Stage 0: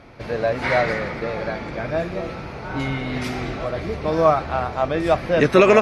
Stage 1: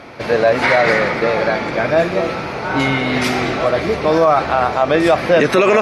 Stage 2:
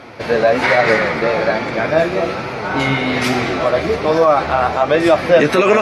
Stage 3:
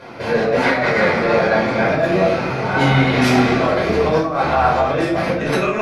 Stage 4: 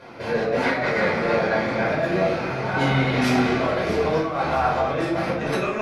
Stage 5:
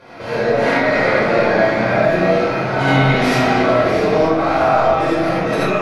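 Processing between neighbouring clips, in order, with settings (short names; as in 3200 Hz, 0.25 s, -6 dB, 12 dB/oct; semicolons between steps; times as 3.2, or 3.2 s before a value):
HPF 280 Hz 6 dB/oct; maximiser +14.5 dB; gain -3 dB
flange 1.2 Hz, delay 7.4 ms, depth 7.1 ms, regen +45%; gain +4 dB
negative-ratio compressor -15 dBFS, ratio -0.5; shoebox room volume 460 m³, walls furnished, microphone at 5 m; gain -8.5 dB
split-band echo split 700 Hz, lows 83 ms, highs 0.646 s, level -12 dB; gain -6 dB
digital reverb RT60 0.69 s, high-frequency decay 0.45×, pre-delay 30 ms, DRR -6 dB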